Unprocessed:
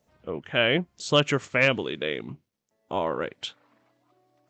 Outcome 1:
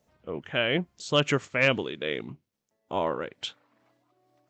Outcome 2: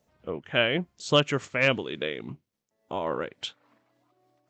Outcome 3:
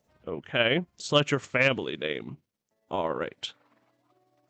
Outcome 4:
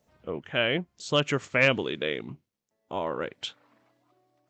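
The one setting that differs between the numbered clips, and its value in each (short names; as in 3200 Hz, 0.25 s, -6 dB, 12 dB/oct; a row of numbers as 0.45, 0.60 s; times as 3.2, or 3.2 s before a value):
tremolo, rate: 2.3, 3.5, 18, 0.54 Hz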